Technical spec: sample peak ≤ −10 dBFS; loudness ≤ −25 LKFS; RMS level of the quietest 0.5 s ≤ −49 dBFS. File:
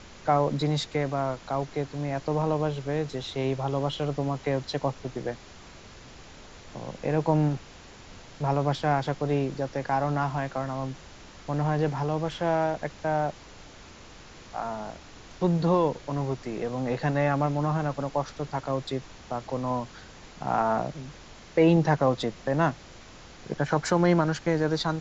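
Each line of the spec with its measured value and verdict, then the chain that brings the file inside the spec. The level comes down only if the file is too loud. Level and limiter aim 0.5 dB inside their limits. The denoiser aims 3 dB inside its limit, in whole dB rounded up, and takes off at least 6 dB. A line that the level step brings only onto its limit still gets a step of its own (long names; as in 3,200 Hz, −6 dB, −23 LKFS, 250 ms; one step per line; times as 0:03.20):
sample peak −9.5 dBFS: out of spec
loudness −28.0 LKFS: in spec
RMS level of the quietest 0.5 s −48 dBFS: out of spec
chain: broadband denoise 6 dB, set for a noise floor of −48 dBFS
brickwall limiter −10.5 dBFS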